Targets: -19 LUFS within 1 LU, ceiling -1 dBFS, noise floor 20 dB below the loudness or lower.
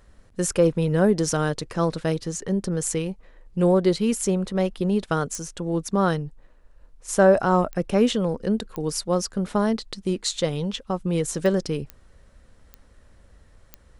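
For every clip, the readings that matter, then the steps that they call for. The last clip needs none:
clicks 7; loudness -24.0 LUFS; peak -5.0 dBFS; loudness target -19.0 LUFS
-> de-click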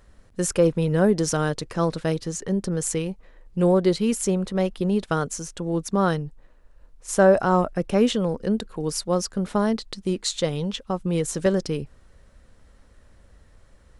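clicks 0; loudness -24.0 LUFS; peak -5.0 dBFS; loudness target -19.0 LUFS
-> gain +5 dB; limiter -1 dBFS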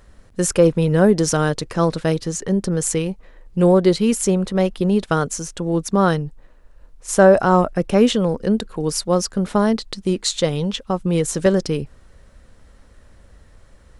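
loudness -19.0 LUFS; peak -1.0 dBFS; noise floor -49 dBFS

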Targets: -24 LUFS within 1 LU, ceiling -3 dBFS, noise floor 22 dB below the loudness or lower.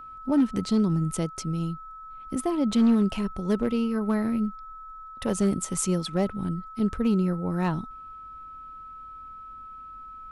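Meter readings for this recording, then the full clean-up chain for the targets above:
clipped 0.5%; flat tops at -15.5 dBFS; steady tone 1300 Hz; tone level -40 dBFS; loudness -26.5 LUFS; peak -15.5 dBFS; loudness target -24.0 LUFS
-> clip repair -15.5 dBFS; notch 1300 Hz, Q 30; gain +2.5 dB

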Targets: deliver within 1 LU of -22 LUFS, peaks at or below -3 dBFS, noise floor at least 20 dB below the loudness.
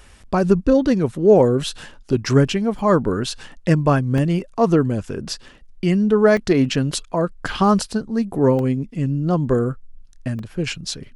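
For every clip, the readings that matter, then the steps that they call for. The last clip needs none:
dropouts 6; longest dropout 1.7 ms; loudness -19.5 LUFS; peak -2.0 dBFS; loudness target -22.0 LUFS
-> interpolate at 2.79/4.18/6.37/7.91/8.59/10.39, 1.7 ms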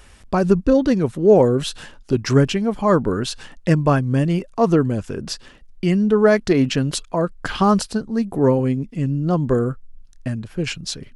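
dropouts 0; loudness -19.5 LUFS; peak -2.0 dBFS; loudness target -22.0 LUFS
-> gain -2.5 dB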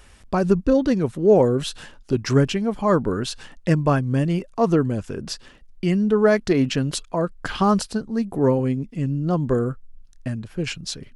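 loudness -22.0 LUFS; peak -4.5 dBFS; noise floor -49 dBFS

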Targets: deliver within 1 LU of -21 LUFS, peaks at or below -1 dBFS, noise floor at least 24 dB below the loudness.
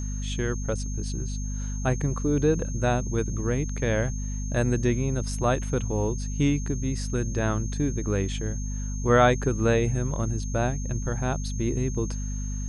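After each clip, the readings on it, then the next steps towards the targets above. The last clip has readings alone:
hum 50 Hz; harmonics up to 250 Hz; hum level -28 dBFS; steady tone 6400 Hz; tone level -40 dBFS; loudness -27.0 LUFS; peak -7.0 dBFS; loudness target -21.0 LUFS
-> notches 50/100/150/200/250 Hz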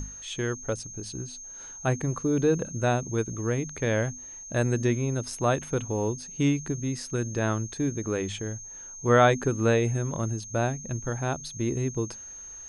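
hum none; steady tone 6400 Hz; tone level -40 dBFS
-> notch 6400 Hz, Q 30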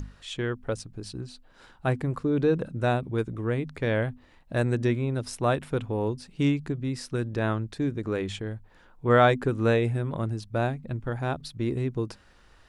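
steady tone none; loudness -28.0 LUFS; peak -8.5 dBFS; loudness target -21.0 LUFS
-> gain +7 dB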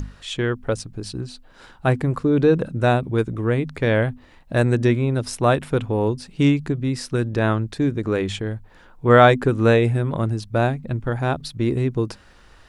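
loudness -21.0 LUFS; peak -1.5 dBFS; noise floor -50 dBFS

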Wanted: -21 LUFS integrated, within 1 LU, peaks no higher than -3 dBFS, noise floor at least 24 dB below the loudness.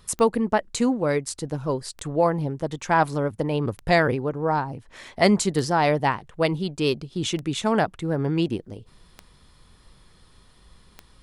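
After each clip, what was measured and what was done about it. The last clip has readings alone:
clicks 7; loudness -24.0 LUFS; peak -4.5 dBFS; loudness target -21.0 LUFS
-> de-click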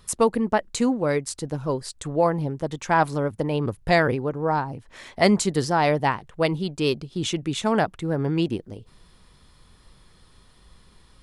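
clicks 0; loudness -24.0 LUFS; peak -4.5 dBFS; loudness target -21.0 LUFS
-> gain +3 dB; limiter -3 dBFS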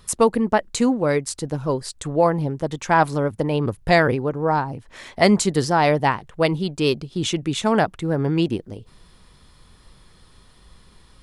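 loudness -21.0 LUFS; peak -3.0 dBFS; noise floor -52 dBFS

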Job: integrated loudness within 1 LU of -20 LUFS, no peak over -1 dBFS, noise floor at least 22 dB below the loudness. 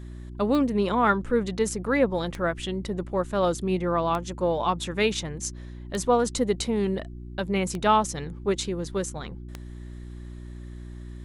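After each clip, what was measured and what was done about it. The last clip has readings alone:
clicks 6; hum 60 Hz; harmonics up to 360 Hz; hum level -37 dBFS; loudness -26.0 LUFS; peak -9.0 dBFS; loudness target -20.0 LUFS
-> de-click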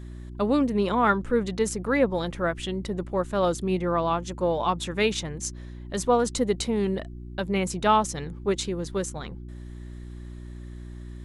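clicks 0; hum 60 Hz; harmonics up to 360 Hz; hum level -37 dBFS
-> de-hum 60 Hz, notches 6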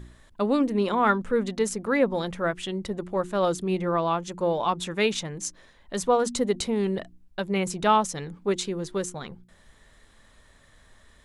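hum none; loudness -26.5 LUFS; peak -9.5 dBFS; loudness target -20.0 LUFS
-> gain +6.5 dB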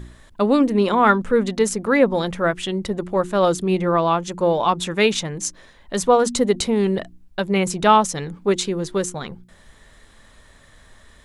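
loudness -20.0 LUFS; peak -3.0 dBFS; noise floor -51 dBFS

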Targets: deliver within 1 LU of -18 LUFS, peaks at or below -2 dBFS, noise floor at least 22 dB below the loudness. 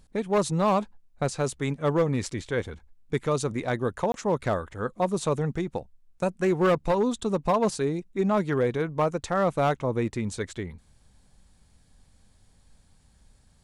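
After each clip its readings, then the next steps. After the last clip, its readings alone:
clipped 0.9%; flat tops at -16.5 dBFS; dropouts 1; longest dropout 22 ms; loudness -27.0 LUFS; peak -16.5 dBFS; loudness target -18.0 LUFS
-> clip repair -16.5 dBFS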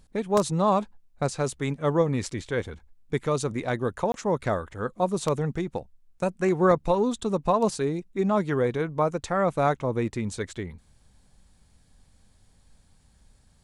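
clipped 0.0%; dropouts 1; longest dropout 22 ms
-> interpolate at 4.12, 22 ms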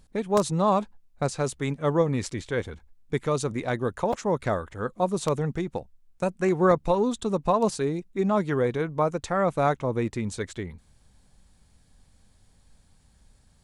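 dropouts 0; loudness -26.5 LUFS; peak -7.5 dBFS; loudness target -18.0 LUFS
-> gain +8.5 dB; limiter -2 dBFS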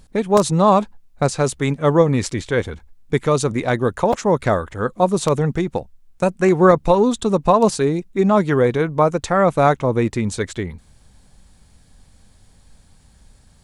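loudness -18.0 LUFS; peak -2.0 dBFS; noise floor -52 dBFS

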